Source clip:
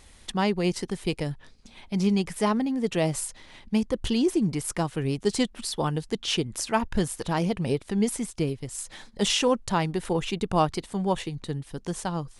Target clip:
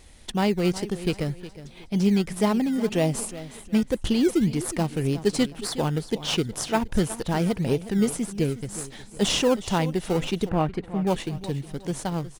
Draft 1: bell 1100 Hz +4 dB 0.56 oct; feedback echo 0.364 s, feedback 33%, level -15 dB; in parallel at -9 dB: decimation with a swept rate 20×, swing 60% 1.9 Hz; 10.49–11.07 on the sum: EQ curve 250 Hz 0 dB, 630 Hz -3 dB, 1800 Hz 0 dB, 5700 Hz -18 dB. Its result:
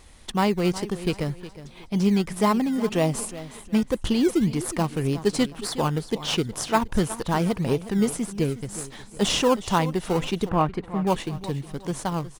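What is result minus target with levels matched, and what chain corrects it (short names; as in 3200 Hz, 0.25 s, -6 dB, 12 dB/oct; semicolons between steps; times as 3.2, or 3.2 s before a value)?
1000 Hz band +4.0 dB
bell 1100 Hz -5 dB 0.56 oct; feedback echo 0.364 s, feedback 33%, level -15 dB; in parallel at -9 dB: decimation with a swept rate 20×, swing 60% 1.9 Hz; 10.49–11.07 on the sum: EQ curve 250 Hz 0 dB, 630 Hz -3 dB, 1800 Hz 0 dB, 5700 Hz -18 dB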